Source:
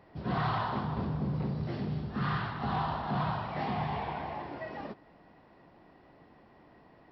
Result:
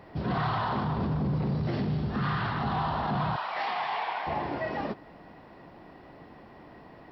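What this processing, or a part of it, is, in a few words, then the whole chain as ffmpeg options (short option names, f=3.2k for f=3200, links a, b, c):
stacked limiters: -filter_complex "[0:a]asettb=1/sr,asplit=3[a][b][c];[a]atrim=end=3.364[d];[b]atrim=start=3.36:end=4.27,asetpts=PTS-STARTPTS,afade=t=in:d=0.004:c=qsin,afade=t=out:st=0.906:d=0.004:c=qsin,highpass=890[e];[c]atrim=start=4.266[f];[d][e]acrossfade=d=0.004:c1=hsin:c2=qsin[g];[g][f]acrossfade=d=0.004:c1=qsin:c2=hsin,alimiter=level_in=3dB:limit=-24dB:level=0:latency=1:release=145,volume=-3dB,alimiter=level_in=6.5dB:limit=-24dB:level=0:latency=1:release=14,volume=-6.5dB,volume=8.5dB"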